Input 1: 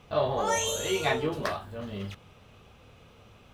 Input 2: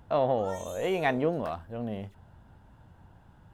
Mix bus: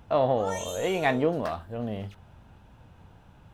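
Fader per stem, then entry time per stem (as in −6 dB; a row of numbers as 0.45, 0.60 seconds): −9.5, +2.0 decibels; 0.00, 0.00 seconds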